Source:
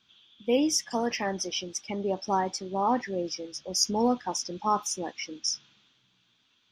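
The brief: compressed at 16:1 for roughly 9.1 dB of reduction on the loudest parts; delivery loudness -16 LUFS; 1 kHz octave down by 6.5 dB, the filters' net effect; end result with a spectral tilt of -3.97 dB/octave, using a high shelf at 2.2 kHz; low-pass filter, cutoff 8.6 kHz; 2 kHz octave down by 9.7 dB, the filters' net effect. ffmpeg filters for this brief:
-af "lowpass=8600,equalizer=f=1000:t=o:g=-6,equalizer=f=2000:t=o:g=-5.5,highshelf=f=2200:g=-8.5,acompressor=threshold=0.0316:ratio=16,volume=11.9"

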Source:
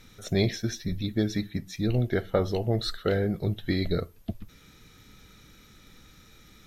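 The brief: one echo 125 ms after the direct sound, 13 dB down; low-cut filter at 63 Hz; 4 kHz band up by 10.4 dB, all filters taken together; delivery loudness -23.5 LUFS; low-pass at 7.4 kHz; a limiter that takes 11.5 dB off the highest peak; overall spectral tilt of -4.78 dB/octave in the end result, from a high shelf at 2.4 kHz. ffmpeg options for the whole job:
-af "highpass=63,lowpass=7400,highshelf=f=2400:g=4,equalizer=f=4000:t=o:g=8.5,alimiter=limit=0.126:level=0:latency=1,aecho=1:1:125:0.224,volume=2"

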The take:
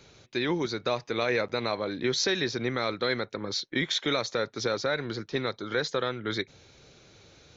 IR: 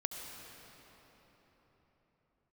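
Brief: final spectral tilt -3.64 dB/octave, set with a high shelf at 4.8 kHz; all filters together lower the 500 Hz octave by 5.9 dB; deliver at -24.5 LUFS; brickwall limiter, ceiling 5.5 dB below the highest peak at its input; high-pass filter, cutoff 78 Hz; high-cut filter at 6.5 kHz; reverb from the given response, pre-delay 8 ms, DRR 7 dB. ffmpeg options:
-filter_complex "[0:a]highpass=78,lowpass=6500,equalizer=f=500:t=o:g=-7.5,highshelf=f=4800:g=4,alimiter=limit=0.0944:level=0:latency=1,asplit=2[s0][s1];[1:a]atrim=start_sample=2205,adelay=8[s2];[s1][s2]afir=irnorm=-1:irlink=0,volume=0.398[s3];[s0][s3]amix=inputs=2:normalize=0,volume=2.24"

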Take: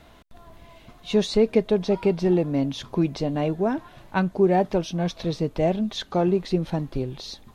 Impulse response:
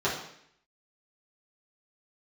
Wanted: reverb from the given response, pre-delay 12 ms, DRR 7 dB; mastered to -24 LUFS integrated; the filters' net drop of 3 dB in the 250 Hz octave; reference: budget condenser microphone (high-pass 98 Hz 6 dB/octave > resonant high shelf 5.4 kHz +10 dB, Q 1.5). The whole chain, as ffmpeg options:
-filter_complex "[0:a]equalizer=f=250:t=o:g=-3.5,asplit=2[s0][s1];[1:a]atrim=start_sample=2205,adelay=12[s2];[s1][s2]afir=irnorm=-1:irlink=0,volume=0.112[s3];[s0][s3]amix=inputs=2:normalize=0,highpass=f=98:p=1,highshelf=f=5400:t=q:w=1.5:g=10,volume=1.06"

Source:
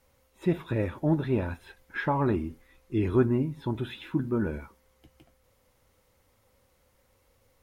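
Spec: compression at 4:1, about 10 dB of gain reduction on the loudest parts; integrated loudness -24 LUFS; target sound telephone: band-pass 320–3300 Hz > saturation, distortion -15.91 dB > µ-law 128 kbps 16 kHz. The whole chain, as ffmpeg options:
-af "acompressor=threshold=0.0355:ratio=4,highpass=320,lowpass=3300,asoftclip=threshold=0.0335,volume=6.68" -ar 16000 -c:a pcm_mulaw

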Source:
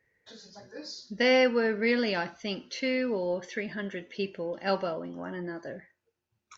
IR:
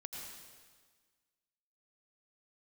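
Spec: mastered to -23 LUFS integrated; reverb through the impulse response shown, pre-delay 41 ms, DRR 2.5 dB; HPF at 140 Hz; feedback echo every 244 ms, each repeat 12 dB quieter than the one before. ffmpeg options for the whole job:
-filter_complex "[0:a]highpass=140,aecho=1:1:244|488|732:0.251|0.0628|0.0157,asplit=2[s0][s1];[1:a]atrim=start_sample=2205,adelay=41[s2];[s1][s2]afir=irnorm=-1:irlink=0,volume=1[s3];[s0][s3]amix=inputs=2:normalize=0,volume=1.58"

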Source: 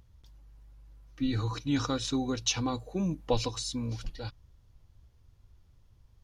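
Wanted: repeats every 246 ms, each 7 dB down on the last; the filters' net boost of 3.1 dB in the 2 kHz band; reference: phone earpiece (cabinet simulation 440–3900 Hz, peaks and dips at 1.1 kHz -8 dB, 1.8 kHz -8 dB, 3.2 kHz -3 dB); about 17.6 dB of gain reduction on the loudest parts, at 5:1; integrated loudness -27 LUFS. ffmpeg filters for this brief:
-af "equalizer=f=2000:t=o:g=9,acompressor=threshold=0.00708:ratio=5,highpass=440,equalizer=f=1100:t=q:w=4:g=-8,equalizer=f=1800:t=q:w=4:g=-8,equalizer=f=3200:t=q:w=4:g=-3,lowpass=f=3900:w=0.5412,lowpass=f=3900:w=1.3066,aecho=1:1:246|492|738|984|1230:0.447|0.201|0.0905|0.0407|0.0183,volume=16.8"

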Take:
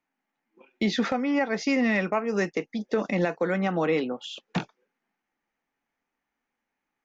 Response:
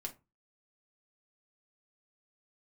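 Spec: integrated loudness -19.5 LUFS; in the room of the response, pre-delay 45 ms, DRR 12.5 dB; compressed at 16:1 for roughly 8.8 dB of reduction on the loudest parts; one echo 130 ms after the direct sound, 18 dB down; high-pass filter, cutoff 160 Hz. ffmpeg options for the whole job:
-filter_complex "[0:a]highpass=160,acompressor=threshold=0.0355:ratio=16,aecho=1:1:130:0.126,asplit=2[s0][s1];[1:a]atrim=start_sample=2205,adelay=45[s2];[s1][s2]afir=irnorm=-1:irlink=0,volume=0.299[s3];[s0][s3]amix=inputs=2:normalize=0,volume=5.31"

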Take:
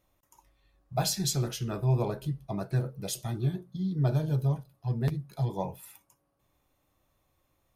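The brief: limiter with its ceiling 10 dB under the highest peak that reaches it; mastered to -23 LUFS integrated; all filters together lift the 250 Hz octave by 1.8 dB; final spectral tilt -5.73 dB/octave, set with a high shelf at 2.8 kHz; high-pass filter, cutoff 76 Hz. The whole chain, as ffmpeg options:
-af "highpass=76,equalizer=f=250:t=o:g=3.5,highshelf=f=2800:g=3.5,volume=2.99,alimiter=limit=0.224:level=0:latency=1"

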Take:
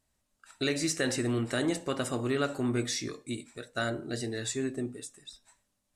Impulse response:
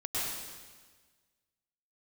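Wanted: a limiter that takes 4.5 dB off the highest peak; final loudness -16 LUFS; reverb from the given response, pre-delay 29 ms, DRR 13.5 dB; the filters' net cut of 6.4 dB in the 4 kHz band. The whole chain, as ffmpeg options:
-filter_complex "[0:a]equalizer=f=4000:t=o:g=-8,alimiter=limit=0.075:level=0:latency=1,asplit=2[s0][s1];[1:a]atrim=start_sample=2205,adelay=29[s2];[s1][s2]afir=irnorm=-1:irlink=0,volume=0.106[s3];[s0][s3]amix=inputs=2:normalize=0,volume=7.94"

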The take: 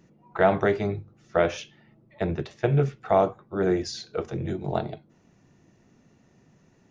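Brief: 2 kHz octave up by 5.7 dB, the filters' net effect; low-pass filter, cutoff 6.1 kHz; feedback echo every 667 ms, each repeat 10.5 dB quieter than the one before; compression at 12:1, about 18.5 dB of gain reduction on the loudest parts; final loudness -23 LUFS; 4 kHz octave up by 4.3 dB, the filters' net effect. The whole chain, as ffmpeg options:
-af "lowpass=6100,equalizer=f=2000:t=o:g=6.5,equalizer=f=4000:t=o:g=4.5,acompressor=threshold=0.0224:ratio=12,aecho=1:1:667|1334|2001:0.299|0.0896|0.0269,volume=6.31"

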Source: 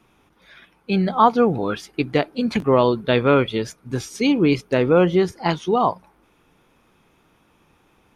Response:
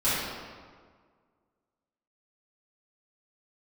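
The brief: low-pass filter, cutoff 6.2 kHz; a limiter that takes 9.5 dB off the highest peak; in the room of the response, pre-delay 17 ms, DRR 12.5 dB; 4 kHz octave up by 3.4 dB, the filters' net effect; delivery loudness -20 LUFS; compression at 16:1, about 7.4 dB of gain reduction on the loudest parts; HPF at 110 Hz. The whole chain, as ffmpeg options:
-filter_complex "[0:a]highpass=110,lowpass=6200,equalizer=f=4000:t=o:g=5,acompressor=threshold=0.141:ratio=16,alimiter=limit=0.2:level=0:latency=1,asplit=2[s0][s1];[1:a]atrim=start_sample=2205,adelay=17[s2];[s1][s2]afir=irnorm=-1:irlink=0,volume=0.0501[s3];[s0][s3]amix=inputs=2:normalize=0,volume=1.78"

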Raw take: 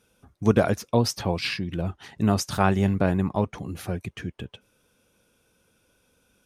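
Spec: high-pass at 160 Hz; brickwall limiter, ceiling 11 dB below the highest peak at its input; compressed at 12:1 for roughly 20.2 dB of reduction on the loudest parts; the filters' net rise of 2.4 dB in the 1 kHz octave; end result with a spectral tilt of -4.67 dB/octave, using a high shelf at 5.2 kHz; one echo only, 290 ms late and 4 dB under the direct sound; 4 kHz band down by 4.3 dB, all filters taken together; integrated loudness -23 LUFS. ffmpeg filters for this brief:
-af "highpass=160,equalizer=f=1000:t=o:g=3.5,equalizer=f=4000:t=o:g=-8.5,highshelf=f=5200:g=4,acompressor=threshold=0.0178:ratio=12,alimiter=level_in=2.37:limit=0.0631:level=0:latency=1,volume=0.422,aecho=1:1:290:0.631,volume=8.91"

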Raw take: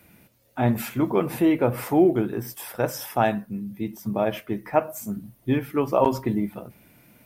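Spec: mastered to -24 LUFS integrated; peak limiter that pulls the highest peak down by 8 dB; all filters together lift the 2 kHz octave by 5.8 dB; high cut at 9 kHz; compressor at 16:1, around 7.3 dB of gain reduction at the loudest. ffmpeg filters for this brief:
-af "lowpass=9000,equalizer=f=2000:t=o:g=7.5,acompressor=threshold=0.1:ratio=16,volume=2,alimiter=limit=0.266:level=0:latency=1"

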